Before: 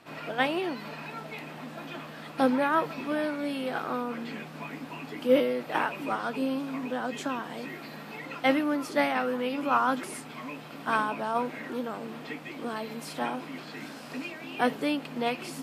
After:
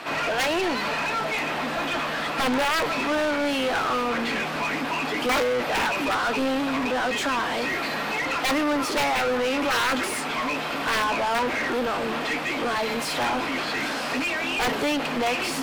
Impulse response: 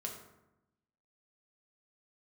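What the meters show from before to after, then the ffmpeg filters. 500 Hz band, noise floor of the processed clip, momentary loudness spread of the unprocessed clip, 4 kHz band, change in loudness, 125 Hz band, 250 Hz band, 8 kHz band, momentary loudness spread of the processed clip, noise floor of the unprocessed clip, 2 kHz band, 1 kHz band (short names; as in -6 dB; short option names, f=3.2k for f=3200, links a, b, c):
+4.5 dB, -29 dBFS, 14 LU, +12.0 dB, +6.0 dB, +5.0 dB, +3.0 dB, +13.0 dB, 4 LU, -43 dBFS, +9.5 dB, +6.0 dB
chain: -filter_complex "[0:a]aeval=exprs='(mod(7.94*val(0)+1,2)-1)/7.94':c=same,asplit=2[a][b];[b]highpass=f=720:p=1,volume=28dB,asoftclip=type=tanh:threshold=-17.5dB[c];[a][c]amix=inputs=2:normalize=0,lowpass=f=4.2k:p=1,volume=-6dB"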